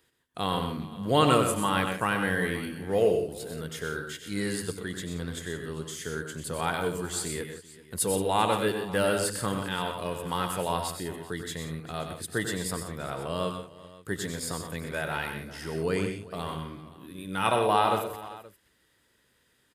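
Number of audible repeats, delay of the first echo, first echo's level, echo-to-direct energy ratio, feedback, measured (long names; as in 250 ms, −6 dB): 5, 94 ms, −9.0 dB, −5.0 dB, repeats not evenly spaced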